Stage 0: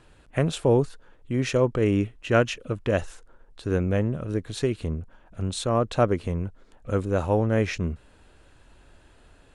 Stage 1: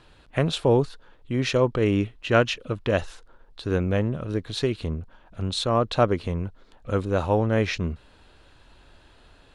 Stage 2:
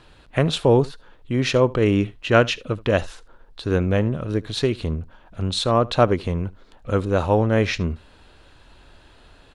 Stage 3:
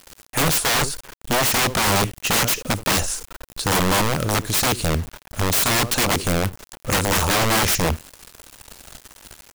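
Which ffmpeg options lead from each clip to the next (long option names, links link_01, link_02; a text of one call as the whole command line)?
ffmpeg -i in.wav -af "equalizer=frequency=1000:width_type=o:width=1:gain=3,equalizer=frequency=4000:width_type=o:width=1:gain=8,equalizer=frequency=8000:width_type=o:width=1:gain=-5" out.wav
ffmpeg -i in.wav -af "aecho=1:1:75:0.075,volume=3.5dB" out.wav
ffmpeg -i in.wav -af "aexciter=amount=9.2:drive=2.6:freq=5300,acrusher=bits=6:mix=0:aa=0.000001,aeval=exprs='(mod(8.91*val(0)+1,2)-1)/8.91':channel_layout=same,volume=5.5dB" out.wav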